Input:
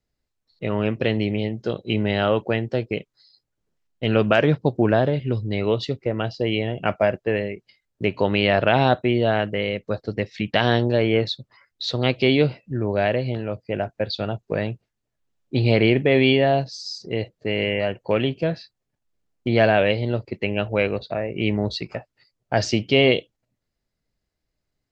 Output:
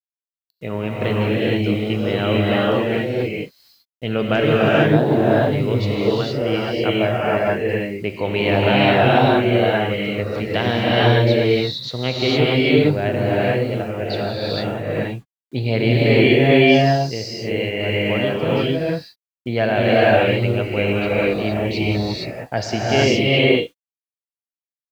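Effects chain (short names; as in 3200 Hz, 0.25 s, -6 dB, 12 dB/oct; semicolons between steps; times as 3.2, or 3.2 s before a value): bit-crush 9-bit; non-linear reverb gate 0.49 s rising, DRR -6.5 dB; gain -3 dB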